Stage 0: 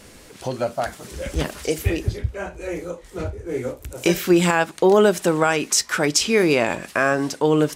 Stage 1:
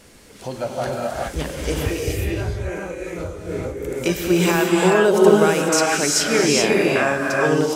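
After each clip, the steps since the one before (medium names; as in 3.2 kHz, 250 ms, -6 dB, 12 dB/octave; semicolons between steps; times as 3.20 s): gated-style reverb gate 450 ms rising, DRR -3 dB; trim -3 dB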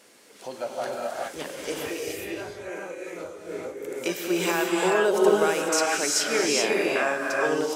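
high-pass 330 Hz 12 dB/octave; trim -5 dB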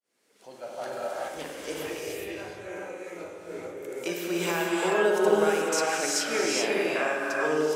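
fade-in on the opening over 0.99 s; spring tank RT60 1.3 s, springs 52 ms, chirp 65 ms, DRR 3.5 dB; attacks held to a fixed rise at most 320 dB/s; trim -4 dB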